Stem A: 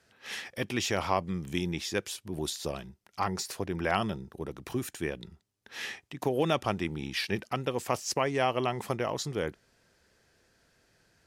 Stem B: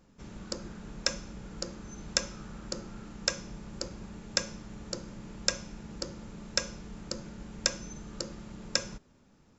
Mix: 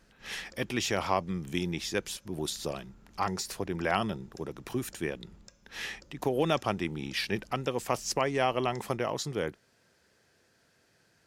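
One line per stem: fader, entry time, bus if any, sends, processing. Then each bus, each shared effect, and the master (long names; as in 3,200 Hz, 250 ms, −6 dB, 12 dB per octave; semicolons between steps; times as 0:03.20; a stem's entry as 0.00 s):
0.0 dB, 0.00 s, no send, high-pass filter 89 Hz
−3.0 dB, 0.00 s, no send, sub-octave generator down 2 octaves, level +2 dB; downward compressor 6 to 1, threshold −38 dBFS, peak gain reduction 16.5 dB; automatic ducking −11 dB, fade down 0.20 s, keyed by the first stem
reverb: not used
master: no processing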